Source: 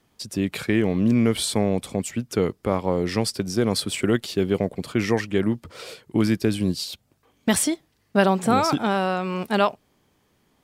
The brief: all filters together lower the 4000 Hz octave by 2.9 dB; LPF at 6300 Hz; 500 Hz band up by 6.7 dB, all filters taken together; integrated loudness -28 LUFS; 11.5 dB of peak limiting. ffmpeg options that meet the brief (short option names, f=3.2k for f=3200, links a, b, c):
-af "lowpass=6.3k,equalizer=f=500:t=o:g=8.5,equalizer=f=4k:t=o:g=-3,volume=-2dB,alimiter=limit=-16dB:level=0:latency=1"